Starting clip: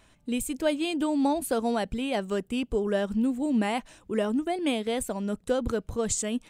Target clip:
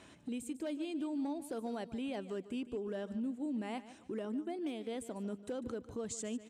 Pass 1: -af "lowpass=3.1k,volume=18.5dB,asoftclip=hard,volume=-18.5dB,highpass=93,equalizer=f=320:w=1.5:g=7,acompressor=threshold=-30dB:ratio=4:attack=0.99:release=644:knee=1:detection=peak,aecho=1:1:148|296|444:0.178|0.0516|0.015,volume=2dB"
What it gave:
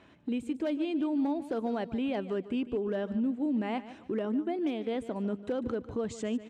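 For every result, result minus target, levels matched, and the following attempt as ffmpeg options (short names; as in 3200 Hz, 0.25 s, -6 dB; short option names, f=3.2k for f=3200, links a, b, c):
8000 Hz band -14.0 dB; compressor: peak gain reduction -8 dB
-af "lowpass=9.5k,volume=18.5dB,asoftclip=hard,volume=-18.5dB,highpass=93,equalizer=f=320:w=1.5:g=7,acompressor=threshold=-30dB:ratio=4:attack=0.99:release=644:knee=1:detection=peak,aecho=1:1:148|296|444:0.178|0.0516|0.015,volume=2dB"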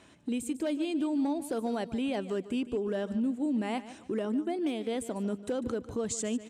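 compressor: peak gain reduction -8 dB
-af "lowpass=9.5k,volume=18.5dB,asoftclip=hard,volume=-18.5dB,highpass=93,equalizer=f=320:w=1.5:g=7,acompressor=threshold=-40.5dB:ratio=4:attack=0.99:release=644:knee=1:detection=peak,aecho=1:1:148|296|444:0.178|0.0516|0.015,volume=2dB"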